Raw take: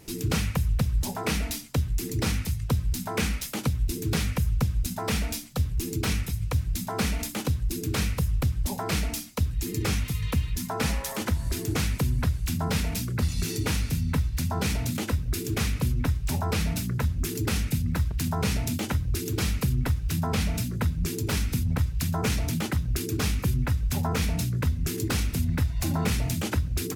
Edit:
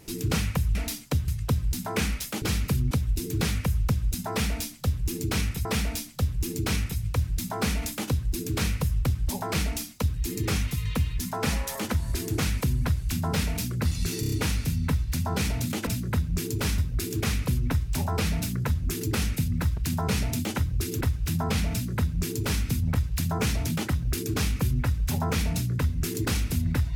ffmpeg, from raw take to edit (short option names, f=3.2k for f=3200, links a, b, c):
-filter_complex "[0:a]asplit=13[a][b][c][d][e][f][g][h][i][j][k][l][m];[a]atrim=end=0.752[n];[b]atrim=start=1.378:end=1.912[o];[c]atrim=start=2.488:end=3.632[p];[d]atrim=start=19.348:end=19.842[q];[e]atrim=start=3.628:end=6.372[r];[f]atrim=start=5.018:end=13.602[s];[g]atrim=start=13.568:end=13.602[t];[h]atrim=start=13.568:end=13.602[u];[i]atrim=start=13.568:end=13.602[v];[j]atrim=start=13.568:end=15.122[w];[k]atrim=start=20.548:end=21.462[x];[l]atrim=start=15.118:end=19.352[y];[m]atrim=start=19.838[z];[n][o]acrossfade=d=0.004:c1=hsin:c2=hsin[aa];[aa][p]acrossfade=d=0.004:c1=hsin:c2=hsin[ab];[ab][q]acrossfade=d=0.004:c1=hsin:c2=hsin[ac];[ac][r]acrossfade=d=0.004:c1=hsin:c2=hsin[ad];[ad][s]acrossfade=d=0.004:c1=hsin:c2=hsin[ae];[ae][t]acrossfade=d=0.004:c1=hsin:c2=hsin[af];[af][u]acrossfade=d=0.004:c1=hsin:c2=hsin[ag];[ag][v]acrossfade=d=0.004:c1=hsin:c2=hsin[ah];[ah][w]acrossfade=d=0.004:c1=hsin:c2=hsin[ai];[ai][x]acrossfade=d=0.004:c1=hsin:c2=hsin[aj];[aj][y]acrossfade=d=0.004:c1=hsin:c2=hsin[ak];[ak][z]acrossfade=d=0.004:c1=hsin:c2=hsin"